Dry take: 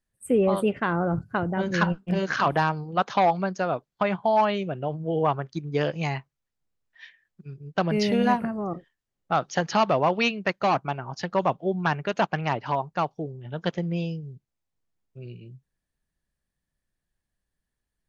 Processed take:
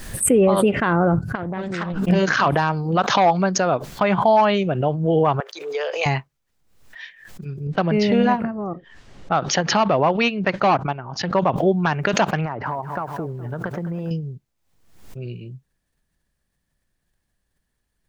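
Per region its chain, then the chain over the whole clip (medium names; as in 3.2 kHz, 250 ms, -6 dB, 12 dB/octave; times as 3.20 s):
1.35–2.05 s: compression 4:1, threshold -33 dBFS + loudspeaker Doppler distortion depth 0.35 ms
5.40–6.06 s: elliptic high-pass 440 Hz, stop band 50 dB + compression 2.5:1, threshold -32 dBFS
7.67–11.56 s: distance through air 110 m + upward expansion, over -32 dBFS
12.45–14.11 s: compression 16:1, threshold -31 dBFS + resonant high shelf 2.2 kHz -13.5 dB, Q 1.5 + bit-crushed delay 209 ms, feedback 35%, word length 10-bit, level -13.5 dB
whole clip: loudness maximiser +15 dB; swell ahead of each attack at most 69 dB/s; trim -7 dB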